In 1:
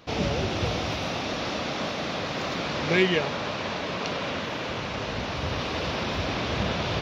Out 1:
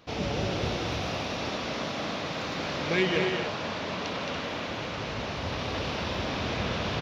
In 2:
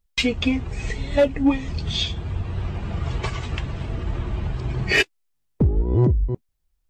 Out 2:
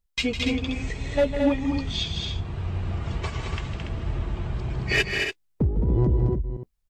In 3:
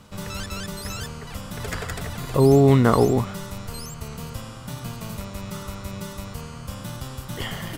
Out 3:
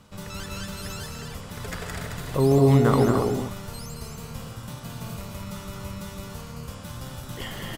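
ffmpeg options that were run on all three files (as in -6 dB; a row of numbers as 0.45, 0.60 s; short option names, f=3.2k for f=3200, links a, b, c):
-af "aecho=1:1:154.5|218.7|285.7:0.316|0.562|0.398,volume=-4.5dB"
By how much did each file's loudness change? -2.5, -2.5, -2.0 LU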